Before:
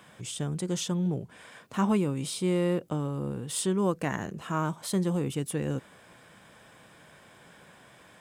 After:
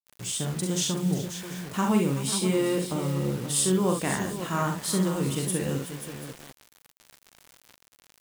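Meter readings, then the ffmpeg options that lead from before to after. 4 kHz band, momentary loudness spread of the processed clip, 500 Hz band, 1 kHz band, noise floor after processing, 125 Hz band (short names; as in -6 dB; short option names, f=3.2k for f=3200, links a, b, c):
+6.5 dB, 11 LU, +2.5 dB, +3.0 dB, -65 dBFS, +2.5 dB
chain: -af "equalizer=f=8.8k:t=o:w=2.7:g=6,aecho=1:1:43|65|70|381|536|738:0.562|0.447|0.133|0.2|0.316|0.112,acrusher=bits=6:mix=0:aa=0.000001"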